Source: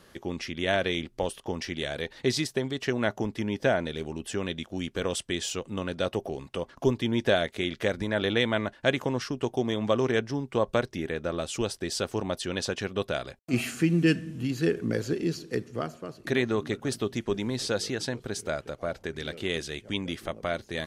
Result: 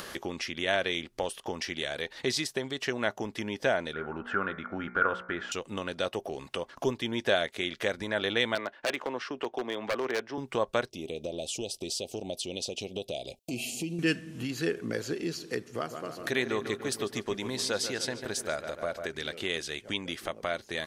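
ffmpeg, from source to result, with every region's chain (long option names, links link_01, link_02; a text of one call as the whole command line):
ffmpeg -i in.wav -filter_complex "[0:a]asettb=1/sr,asplit=3[link_01][link_02][link_03];[link_01]atrim=end=3.934[link_04];[link_02]atrim=start=3.93:end=5.52,asetpts=PTS-STARTPTS,afade=type=in:duration=0.004:curve=qsin,afade=type=out:start_time=1.586:duration=0.004:curve=qsin,lowpass=frequency=1400:width_type=q:width=16,equalizer=frequency=200:width_type=o:width=0.26:gain=5,bandreject=frequency=60.49:width_type=h:width=4,bandreject=frequency=120.98:width_type=h:width=4,bandreject=frequency=181.47:width_type=h:width=4,bandreject=frequency=241.96:width_type=h:width=4,bandreject=frequency=302.45:width_type=h:width=4,bandreject=frequency=362.94:width_type=h:width=4,bandreject=frequency=423.43:width_type=h:width=4,bandreject=frequency=483.92:width_type=h:width=4,bandreject=frequency=544.41:width_type=h:width=4,bandreject=frequency=604.9:width_type=h:width=4,bandreject=frequency=665.39:width_type=h:width=4,bandreject=frequency=725.88:width_type=h:width=4,bandreject=frequency=786.37:width_type=h:width=4,bandreject=frequency=846.86:width_type=h:width=4,bandreject=frequency=907.35:width_type=h:width=4,bandreject=frequency=967.84:width_type=h:width=4,bandreject=frequency=1028.33:width_type=h:width=4,bandreject=frequency=1088.82:width_type=h:width=4,bandreject=frequency=1149.31:width_type=h:width=4,bandreject=frequency=1209.8:width_type=h:width=4,bandreject=frequency=1270.29:width_type=h:width=4,bandreject=frequency=1330.78:width_type=h:width=4,bandreject=frequency=1391.27:width_type=h:width=4,bandreject=frequency=1451.76:width_type=h:width=4,bandreject=frequency=1512.25:width_type=h:width=4,bandreject=frequency=1572.74:width_type=h:width=4,bandreject=frequency=1633.23:width_type=h:width=4,bandreject=frequency=1693.72:width_type=h:width=4,bandreject=frequency=1754.21:width_type=h:width=4,bandreject=frequency=1814.7:width_type=h:width=4,bandreject=frequency=1875.19:width_type=h:width=4,bandreject=frequency=1935.68:width_type=h:width=4,bandreject=frequency=1996.17:width_type=h:width=4,bandreject=frequency=2056.66:width_type=h:width=4,bandreject=frequency=2117.15:width_type=h:width=4,bandreject=frequency=2177.64:width_type=h:width=4,bandreject=frequency=2238.13:width_type=h:width=4,bandreject=frequency=2298.62:width_type=h:width=4,bandreject=frequency=2359.11:width_type=h:width=4[link_05];[link_03]atrim=start=5.516[link_06];[link_04][link_05]acrossfade=duration=0.004:curve1=hsin:curve2=qsin[link_07];[link_07][link_06]acrossfade=duration=0.004:curve1=qsin:curve2=hsin,asettb=1/sr,asplit=3[link_08][link_09][link_10];[link_08]atrim=end=8.554[link_11];[link_09]atrim=start=8.55:end=10.38,asetpts=PTS-STARTPTS,afade=type=in:duration=0.004:curve=qsin,afade=type=out:start_time=1.826:duration=0.004:curve=qsin,lowpass=8600,acrossover=split=250 3600:gain=0.2 1 0.2[link_12][link_13][link_14];[link_12][link_13][link_14]amix=inputs=3:normalize=0,aeval=exprs='0.0944*(abs(mod(val(0)/0.0944+3,4)-2)-1)':channel_layout=same[link_15];[link_10]atrim=start=10.376[link_16];[link_11][link_15]acrossfade=duration=0.004:curve1=hsin:curve2=qsin[link_17];[link_17][link_16]acrossfade=duration=0.004:curve1=qsin:curve2=hsin,asettb=1/sr,asplit=3[link_18][link_19][link_20];[link_18]atrim=end=10.904[link_21];[link_19]atrim=start=10.9:end=13.99,asetpts=PTS-STARTPTS,afade=type=in:duration=0.004:curve=qsin,afade=type=out:start_time=3.086:duration=0.004:curve=qsin,asuperstop=centerf=1400:order=8:qfactor=0.77,acompressor=threshold=-36dB:ratio=1.5:attack=3.2:release=140:knee=1:detection=peak[link_22];[link_20]atrim=start=13.986[link_23];[link_21][link_22]acrossfade=duration=0.004:curve1=hsin:curve2=qsin[link_24];[link_24][link_23]acrossfade=duration=0.004:curve1=qsin:curve2=hsin,asettb=1/sr,asplit=3[link_25][link_26][link_27];[link_25]atrim=end=15.664[link_28];[link_26]atrim=start=15.66:end=19.12,asetpts=PTS-STARTPTS,afade=type=in:duration=0.004:curve=qsin,afade=type=out:start_time=3.456:duration=0.004:curve=qsin,highshelf=frequency=10000:gain=6.5,asplit=2[link_29][link_30];[link_30]adelay=146,lowpass=frequency=2500:poles=1,volume=-9dB,asplit=2[link_31][link_32];[link_32]adelay=146,lowpass=frequency=2500:poles=1,volume=0.53,asplit=2[link_33][link_34];[link_34]adelay=146,lowpass=frequency=2500:poles=1,volume=0.53,asplit=2[link_35][link_36];[link_36]adelay=146,lowpass=frequency=2500:poles=1,volume=0.53,asplit=2[link_37][link_38];[link_38]adelay=146,lowpass=frequency=2500:poles=1,volume=0.53,asplit=2[link_39][link_40];[link_40]adelay=146,lowpass=frequency=2500:poles=1,volume=0.53[link_41];[link_29][link_31][link_33][link_35][link_37][link_39][link_41]amix=inputs=7:normalize=0,atrim=end_sample=152586[link_42];[link_27]atrim=start=19.116[link_43];[link_28][link_42]acrossfade=duration=0.004:curve1=hsin:curve2=qsin[link_44];[link_44][link_43]acrossfade=duration=0.004:curve1=qsin:curve2=hsin,lowshelf=frequency=320:gain=-11,acompressor=mode=upward:threshold=-29dB:ratio=2.5" out.wav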